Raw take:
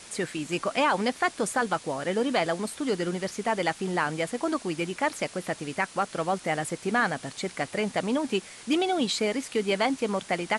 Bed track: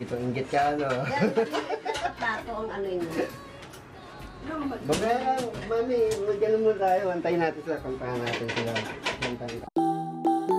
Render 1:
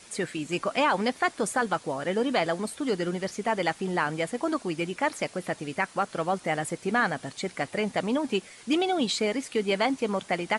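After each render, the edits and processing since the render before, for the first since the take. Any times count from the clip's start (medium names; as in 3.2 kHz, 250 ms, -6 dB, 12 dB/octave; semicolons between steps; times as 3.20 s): noise reduction 6 dB, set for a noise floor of -47 dBFS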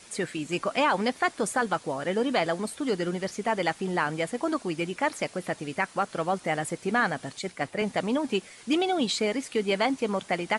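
7.39–7.82 s: three bands expanded up and down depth 100%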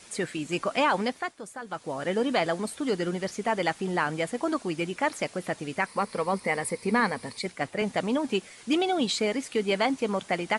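0.97–2.03 s: dip -13 dB, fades 0.39 s; 5.86–7.46 s: rippled EQ curve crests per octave 0.91, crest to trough 10 dB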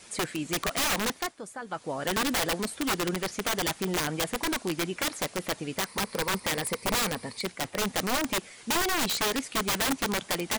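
integer overflow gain 21.5 dB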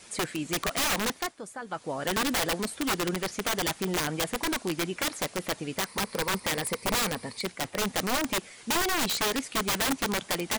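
no audible change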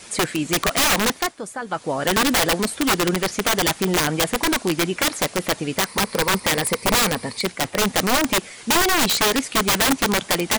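trim +9 dB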